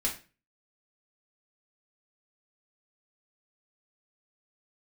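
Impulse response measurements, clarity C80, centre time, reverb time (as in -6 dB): 15.0 dB, 19 ms, 0.35 s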